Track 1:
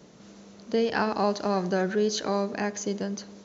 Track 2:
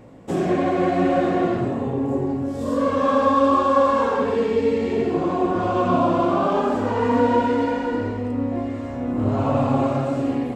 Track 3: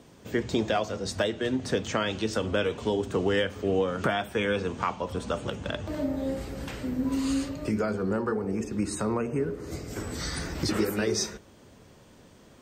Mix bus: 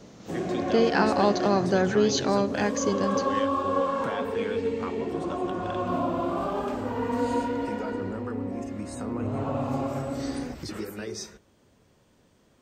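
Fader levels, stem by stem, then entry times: +2.5, −9.0, −8.5 decibels; 0.00, 0.00, 0.00 seconds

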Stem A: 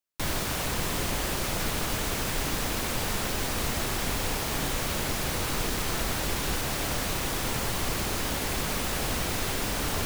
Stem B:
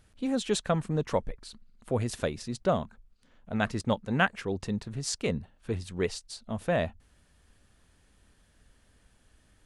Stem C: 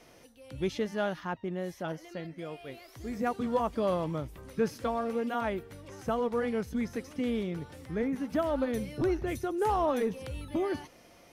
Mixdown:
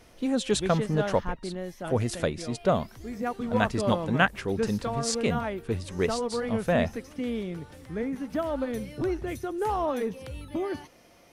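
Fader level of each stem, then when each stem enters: muted, +2.5 dB, 0.0 dB; muted, 0.00 s, 0.00 s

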